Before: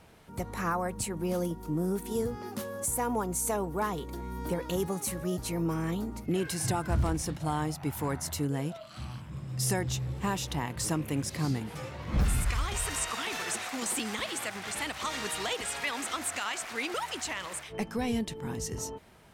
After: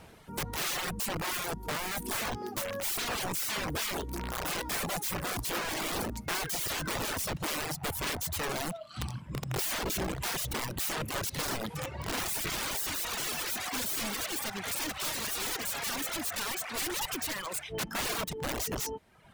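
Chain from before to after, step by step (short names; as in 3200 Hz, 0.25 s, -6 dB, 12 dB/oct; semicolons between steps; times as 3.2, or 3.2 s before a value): wrapped overs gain 31 dB; reverb removal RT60 1 s; gain +4.5 dB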